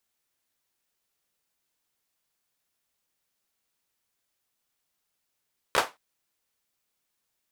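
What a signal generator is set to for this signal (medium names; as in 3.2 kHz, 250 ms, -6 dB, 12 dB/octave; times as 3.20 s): hand clap length 0.22 s, bursts 3, apart 14 ms, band 890 Hz, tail 0.22 s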